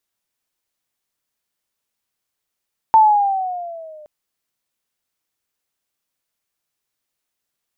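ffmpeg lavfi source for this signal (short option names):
-f lavfi -i "aevalsrc='pow(10,(-5.5-32*t/1.12)/20)*sin(2*PI*894*1.12/(-7*log(2)/12)*(exp(-7*log(2)/12*t/1.12)-1))':d=1.12:s=44100"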